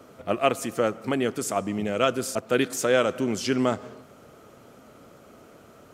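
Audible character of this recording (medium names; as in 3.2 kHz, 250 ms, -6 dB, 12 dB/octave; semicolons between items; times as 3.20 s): noise floor -52 dBFS; spectral tilt -4.0 dB/octave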